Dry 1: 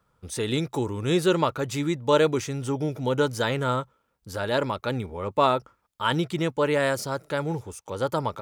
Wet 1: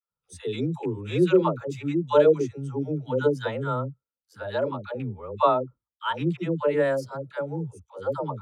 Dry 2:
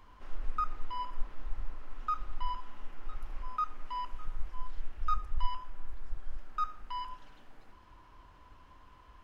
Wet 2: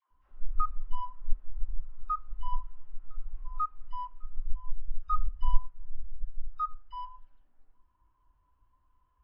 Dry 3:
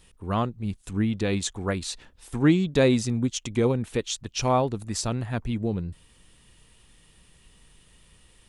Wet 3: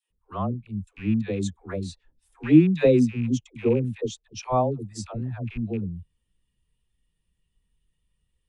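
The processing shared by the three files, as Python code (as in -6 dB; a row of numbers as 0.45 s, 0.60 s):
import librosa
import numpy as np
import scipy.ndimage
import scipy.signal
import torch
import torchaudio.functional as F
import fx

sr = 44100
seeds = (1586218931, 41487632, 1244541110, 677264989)

y = fx.rattle_buzz(x, sr, strikes_db=-27.0, level_db=-21.0)
y = fx.dispersion(y, sr, late='lows', ms=107.0, hz=510.0)
y = fx.spectral_expand(y, sr, expansion=1.5)
y = y * 10.0 ** (-26 / 20.0) / np.sqrt(np.mean(np.square(y)))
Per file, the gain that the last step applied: +1.5 dB, +7.0 dB, +3.5 dB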